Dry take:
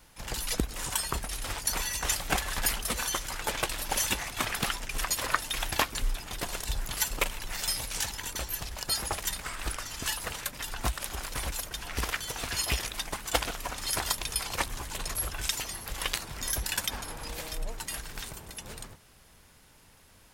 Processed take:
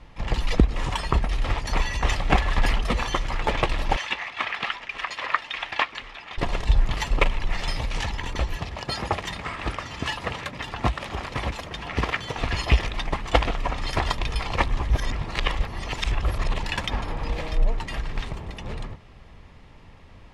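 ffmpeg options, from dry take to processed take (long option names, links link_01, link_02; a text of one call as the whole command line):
ffmpeg -i in.wav -filter_complex "[0:a]asettb=1/sr,asplit=3[link_01][link_02][link_03];[link_01]atrim=end=3.964[link_04];[link_02]atrim=start=3.96:end=6.38,asetpts=PTS-STARTPTS,afade=type=in:duration=0.004:curve=qsin,afade=type=out:start_time=2.416:duration=0.004:curve=qsin,bandpass=frequency=2200:width_type=q:width=0.74[link_05];[link_03]atrim=start=6.376[link_06];[link_04][link_05]acrossfade=duration=0.004:curve1=hsin:curve2=qsin[link_07];[link_07][link_06]acrossfade=duration=0.004:curve1=qsin:curve2=hsin,asettb=1/sr,asplit=3[link_08][link_09][link_10];[link_08]atrim=end=8.574[link_11];[link_09]atrim=start=8.57:end=12.38,asetpts=PTS-STARTPTS,afade=type=in:duration=0.004:curve=qsin,afade=type=out:start_time=3.806:duration=0.004:curve=qsin,highpass=92[link_12];[link_10]atrim=start=12.376[link_13];[link_11][link_12]acrossfade=duration=0.004:curve1=hsin:curve2=qsin[link_14];[link_14][link_13]acrossfade=duration=0.004:curve1=qsin:curve2=hsin,asplit=3[link_15][link_16][link_17];[link_15]atrim=end=14.902[link_18];[link_16]atrim=start=14.898:end=16.632,asetpts=PTS-STARTPTS,areverse[link_19];[link_17]atrim=start=16.628[link_20];[link_18][link_19]acrossfade=duration=0.004:curve1=hsin:curve2=hsin[link_21];[link_21][link_20]acrossfade=duration=0.004:curve1=hsin:curve2=hsin,lowpass=2600,lowshelf=frequency=160:gain=6.5,bandreject=frequency=1500:width=6.2,volume=8.5dB" out.wav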